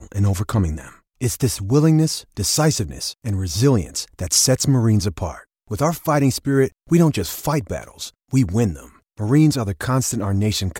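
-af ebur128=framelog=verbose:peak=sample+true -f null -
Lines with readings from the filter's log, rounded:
Integrated loudness:
  I:         -19.5 LUFS
  Threshold: -29.9 LUFS
Loudness range:
  LRA:         2.3 LU
  Threshold: -39.8 LUFS
  LRA low:   -20.9 LUFS
  LRA high:  -18.6 LUFS
Sample peak:
  Peak:       -3.8 dBFS
True peak:
  Peak:       -3.8 dBFS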